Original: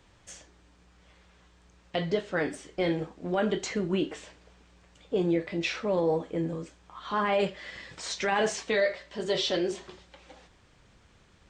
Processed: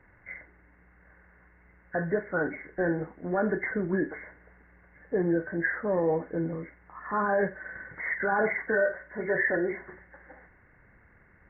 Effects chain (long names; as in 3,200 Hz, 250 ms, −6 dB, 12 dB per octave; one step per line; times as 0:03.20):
hearing-aid frequency compression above 1,400 Hz 4 to 1